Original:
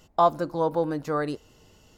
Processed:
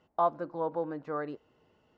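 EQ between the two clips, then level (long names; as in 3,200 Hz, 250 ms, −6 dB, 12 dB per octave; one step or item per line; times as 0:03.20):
high-pass filter 250 Hz 6 dB per octave
low-pass filter 2,000 Hz 12 dB per octave
−6.5 dB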